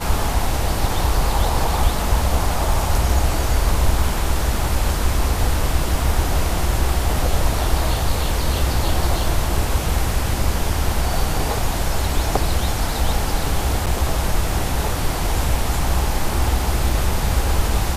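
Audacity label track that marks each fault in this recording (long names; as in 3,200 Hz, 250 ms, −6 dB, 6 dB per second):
13.860000	13.870000	drop-out 7.6 ms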